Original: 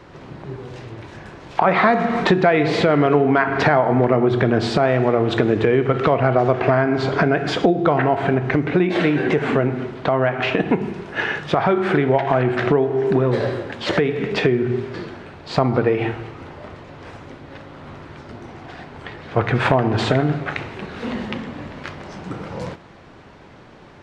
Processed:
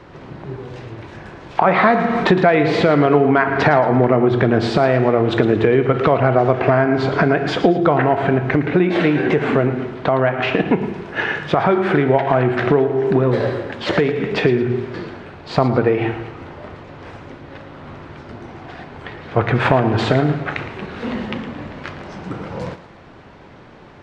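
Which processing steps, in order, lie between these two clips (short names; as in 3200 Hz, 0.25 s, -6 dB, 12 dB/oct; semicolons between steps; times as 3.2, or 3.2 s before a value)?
high shelf 6300 Hz -8.5 dB; on a send: thinning echo 0.112 s, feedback 37%, level -13 dB; on the sum: gain +2 dB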